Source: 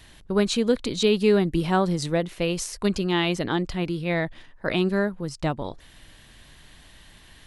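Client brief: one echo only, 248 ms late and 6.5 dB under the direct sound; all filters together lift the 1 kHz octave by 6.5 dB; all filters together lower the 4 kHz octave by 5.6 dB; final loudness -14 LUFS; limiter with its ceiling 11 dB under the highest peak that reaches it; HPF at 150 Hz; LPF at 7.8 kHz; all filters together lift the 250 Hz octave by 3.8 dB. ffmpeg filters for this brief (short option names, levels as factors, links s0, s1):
-af "highpass=150,lowpass=7800,equalizer=f=250:t=o:g=6.5,equalizer=f=1000:t=o:g=8.5,equalizer=f=4000:t=o:g=-8,alimiter=limit=0.178:level=0:latency=1,aecho=1:1:248:0.473,volume=3.55"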